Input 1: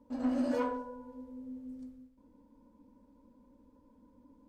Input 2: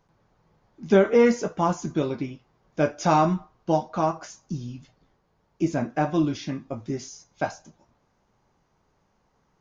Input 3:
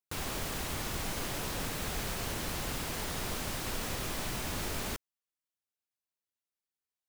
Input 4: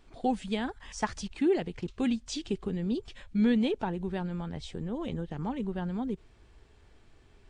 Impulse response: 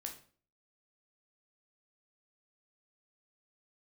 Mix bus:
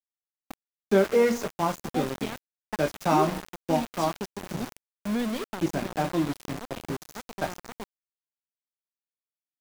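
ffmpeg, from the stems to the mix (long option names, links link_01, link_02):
-filter_complex "[0:a]equalizer=frequency=240:width=0.5:gain=9.5,volume=-16.5dB,asplit=2[link_01][link_02];[link_02]volume=-8dB[link_03];[1:a]bandreject=frequency=60:width_type=h:width=6,bandreject=frequency=120:width_type=h:width=6,bandreject=frequency=180:width_type=h:width=6,bandreject=frequency=240:width_type=h:width=6,bandreject=frequency=300:width_type=h:width=6,volume=-3dB,asplit=2[link_04][link_05];[link_05]volume=-20.5dB[link_06];[2:a]equalizer=frequency=720:width_type=o:width=2.1:gain=13.5,adelay=350,volume=-18dB[link_07];[3:a]adelay=1700,volume=-3dB,asplit=2[link_08][link_09];[link_09]volume=-17.5dB[link_10];[link_03][link_06][link_10]amix=inputs=3:normalize=0,aecho=0:1:220:1[link_11];[link_01][link_04][link_07][link_08][link_11]amix=inputs=5:normalize=0,acrossover=split=160[link_12][link_13];[link_12]acompressor=threshold=-35dB:ratio=6[link_14];[link_14][link_13]amix=inputs=2:normalize=0,aeval=exprs='val(0)*gte(abs(val(0)),0.0316)':channel_layout=same"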